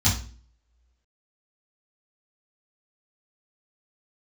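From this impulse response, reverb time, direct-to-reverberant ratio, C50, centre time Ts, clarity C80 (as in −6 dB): 0.40 s, −11.5 dB, 6.5 dB, 29 ms, 13.0 dB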